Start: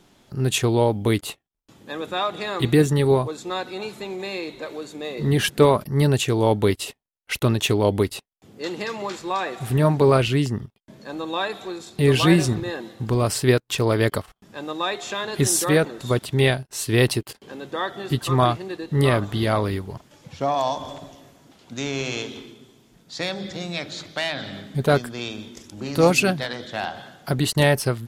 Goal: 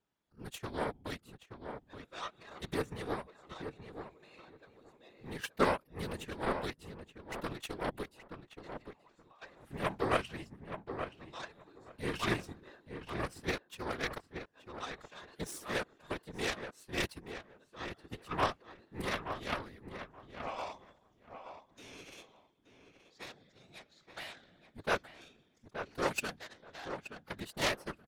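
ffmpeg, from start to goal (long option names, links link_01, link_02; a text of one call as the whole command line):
ffmpeg -i in.wav -filter_complex "[0:a]asplit=2[link_01][link_02];[link_02]alimiter=limit=-11.5dB:level=0:latency=1:release=102,volume=-1dB[link_03];[link_01][link_03]amix=inputs=2:normalize=0,asettb=1/sr,asplit=3[link_04][link_05][link_06];[link_04]atrim=end=8.794[link_07];[link_05]atrim=start=8.79:end=9.42,asetpts=PTS-STARTPTS,afade=type=in:duration=0.004:curve=qsin,afade=type=out:start_time=0.626:duration=0.004:curve=qsin,acompressor=threshold=-28dB:ratio=6[link_08];[link_06]atrim=start=9.416[link_09];[link_07][link_08]acrossfade=duration=0.004:curve1=hsin:curve2=qsin[link_10];[link_10][link_09]acrossfade=duration=0.004:curve1=qsin:curve2=hsin,equalizer=frequency=1400:width=0.79:gain=6.5,aeval=exprs='1.33*(cos(1*acos(clip(val(0)/1.33,-1,1)))-cos(1*PI/2))+0.422*(cos(3*acos(clip(val(0)/1.33,-1,1)))-cos(3*PI/2))':channel_layout=same,afftfilt=real='hypot(re,im)*cos(2*PI*random(0))':imag='hypot(re,im)*sin(2*PI*random(1))':win_size=512:overlap=0.75,asplit=2[link_11][link_12];[link_12]adelay=875,lowpass=frequency=2100:poles=1,volume=-8dB,asplit=2[link_13][link_14];[link_14]adelay=875,lowpass=frequency=2100:poles=1,volume=0.17,asplit=2[link_15][link_16];[link_16]adelay=875,lowpass=frequency=2100:poles=1,volume=0.17[link_17];[link_11][link_13][link_15][link_17]amix=inputs=4:normalize=0,volume=-6dB" out.wav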